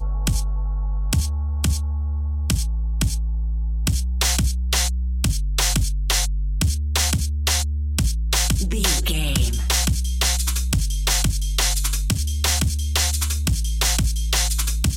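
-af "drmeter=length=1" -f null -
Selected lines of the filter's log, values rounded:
Channel 1: DR: 10.2
Overall DR: 10.2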